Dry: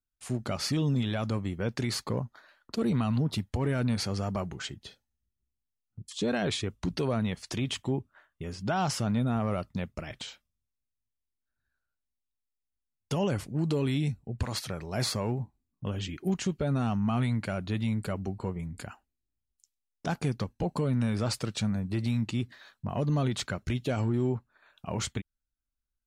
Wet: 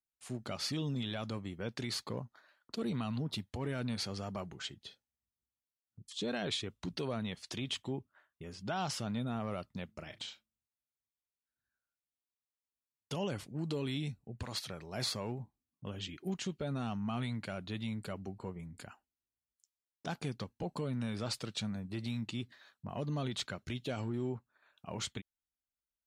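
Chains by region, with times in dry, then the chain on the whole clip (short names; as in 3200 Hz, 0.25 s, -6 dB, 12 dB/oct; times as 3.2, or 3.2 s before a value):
9.85–13.16 doubler 38 ms -13 dB + de-hum 109 Hz, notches 3
whole clip: HPF 120 Hz 6 dB/oct; dynamic EQ 3600 Hz, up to +6 dB, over -53 dBFS, Q 1.6; gain -7.5 dB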